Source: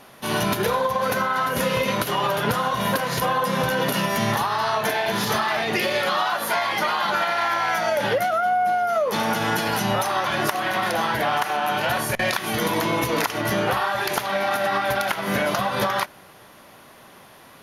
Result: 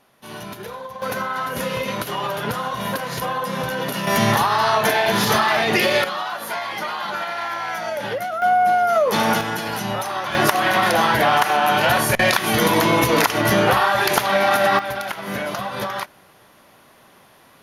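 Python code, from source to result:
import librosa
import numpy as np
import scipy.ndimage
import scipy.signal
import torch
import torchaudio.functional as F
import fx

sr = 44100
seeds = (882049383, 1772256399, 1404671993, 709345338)

y = fx.gain(x, sr, db=fx.steps((0.0, -11.5), (1.02, -2.5), (4.07, 5.0), (6.04, -4.0), (8.42, 4.5), (9.41, -2.5), (10.35, 6.0), (14.79, -3.5)))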